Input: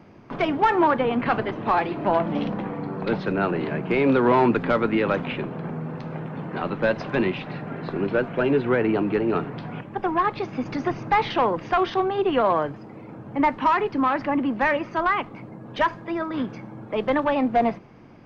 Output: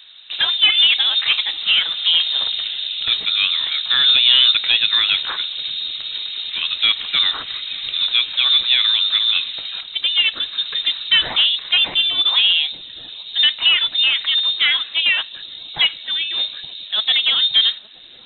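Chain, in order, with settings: inverted band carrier 3900 Hz; dark delay 0.869 s, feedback 74%, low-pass 440 Hz, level -11 dB; gain +5 dB

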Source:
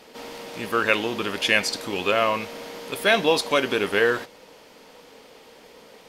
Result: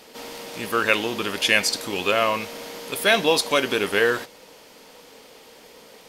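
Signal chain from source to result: high shelf 4900 Hz +7.5 dB

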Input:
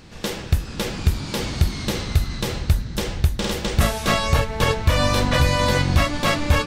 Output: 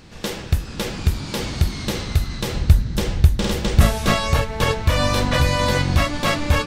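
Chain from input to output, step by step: 2.54–4.13 low shelf 270 Hz +6 dB

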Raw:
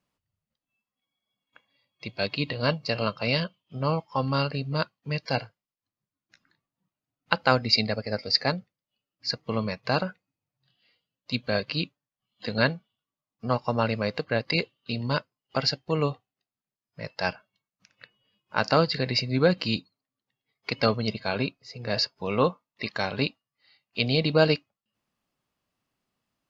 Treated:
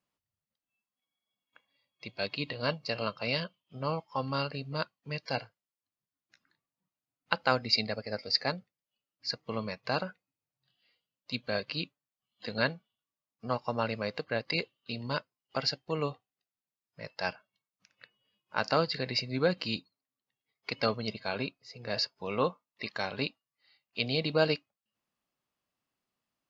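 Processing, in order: low shelf 210 Hz -6 dB; gain -5 dB

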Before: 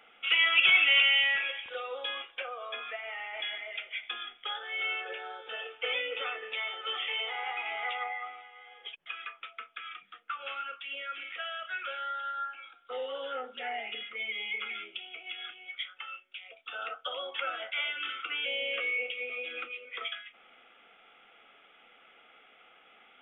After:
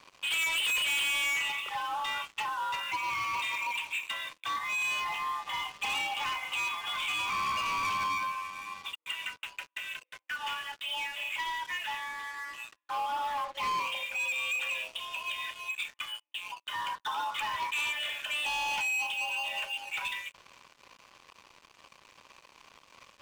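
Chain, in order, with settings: LPF 1600 Hz 12 dB/oct; frequency shift +310 Hz; in parallel at -2 dB: compressor 12:1, threshold -45 dBFS, peak gain reduction 19.5 dB; on the sum: fixed phaser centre 1100 Hz, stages 8; sample leveller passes 5; gain -7 dB

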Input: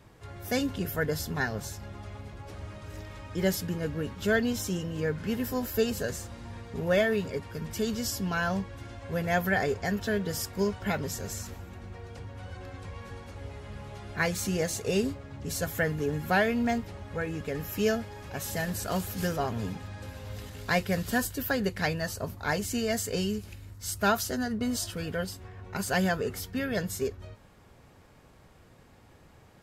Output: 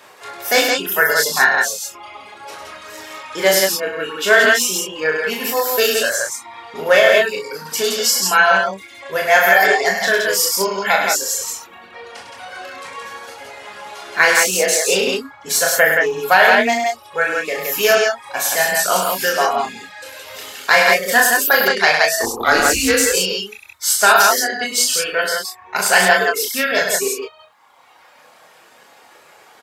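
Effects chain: reverb removal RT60 0.9 s; HPF 670 Hz 12 dB/oct; reverb removal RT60 2 s; 22.09–23.01 frequency shift -180 Hz; doubler 26 ms -5 dB; loudspeakers at several distances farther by 13 m -4 dB, 35 m -6 dB, 58 m -3 dB; maximiser +16.5 dB; Doppler distortion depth 0.1 ms

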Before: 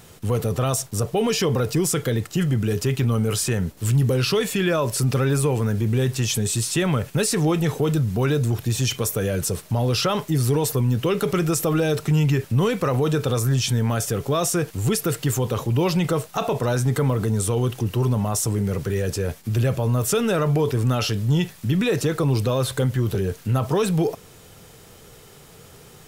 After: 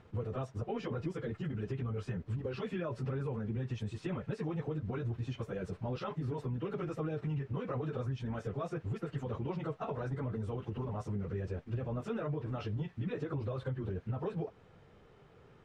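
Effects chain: plain phase-vocoder stretch 0.6×; compressor, threshold -25 dBFS, peak gain reduction 8 dB; LPF 2000 Hz 12 dB/oct; gain -8 dB

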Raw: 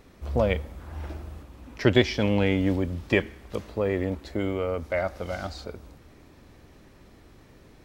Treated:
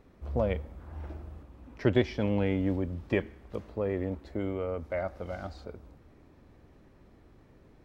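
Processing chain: high shelf 2300 Hz -11.5 dB; gain -4.5 dB

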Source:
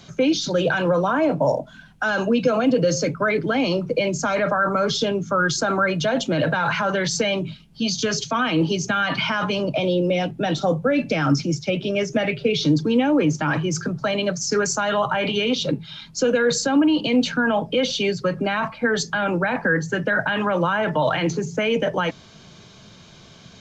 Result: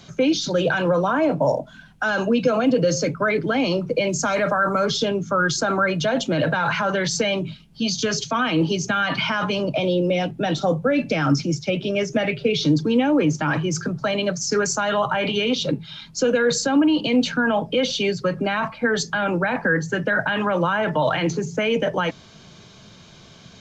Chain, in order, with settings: 4.09–4.86 high shelf 7200 Hz +10 dB

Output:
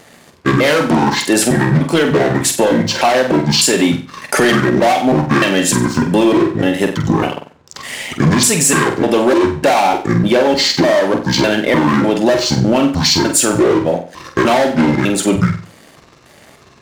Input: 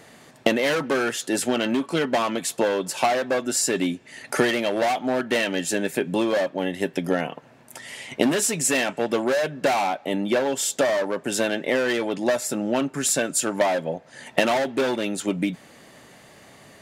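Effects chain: trilling pitch shifter -9 st, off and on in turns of 0.301 s; sample leveller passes 2; on a send: flutter echo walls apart 8 m, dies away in 0.39 s; on the sum: maximiser +8 dB; gain -3 dB

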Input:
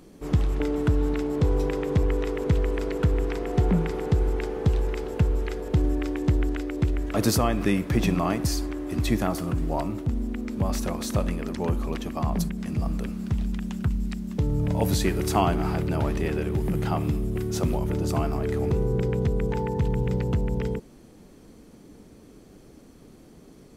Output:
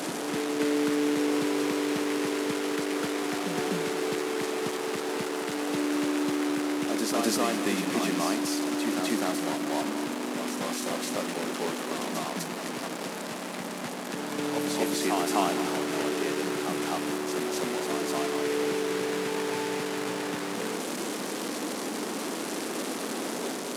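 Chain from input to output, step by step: delta modulation 64 kbps, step -23 dBFS; HPF 230 Hz 24 dB/oct; reverse echo 0.252 s -3.5 dB; lo-fi delay 0.211 s, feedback 55%, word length 7-bit, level -14 dB; gain -3.5 dB

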